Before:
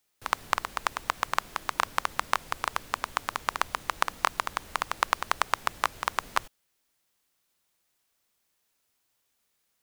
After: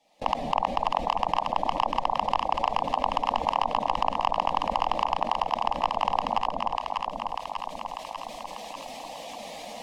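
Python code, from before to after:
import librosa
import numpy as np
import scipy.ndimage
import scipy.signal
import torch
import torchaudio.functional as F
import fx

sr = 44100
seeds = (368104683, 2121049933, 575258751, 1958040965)

p1 = fx.bin_expand(x, sr, power=1.5)
p2 = fx.recorder_agc(p1, sr, target_db=-6.0, rise_db_per_s=36.0, max_gain_db=30)
p3 = fx.schmitt(p2, sr, flips_db=-26.0)
p4 = p2 + (p3 * 10.0 ** (-3.5 / 20.0))
p5 = fx.peak_eq(p4, sr, hz=750.0, db=14.0, octaves=1.8)
p6 = np.clip(p5, -10.0 ** (-10.0 / 20.0), 10.0 ** (-10.0 / 20.0))
p7 = scipy.signal.sosfilt(scipy.signal.butter(2, 2600.0, 'lowpass', fs=sr, output='sos'), p6)
p8 = fx.low_shelf(p7, sr, hz=200.0, db=-8.0)
p9 = fx.fixed_phaser(p8, sr, hz=390.0, stages=6)
p10 = p9 + fx.echo_alternate(p9, sr, ms=297, hz=900.0, feedback_pct=52, wet_db=-5.0, dry=0)
y = fx.env_flatten(p10, sr, amount_pct=70)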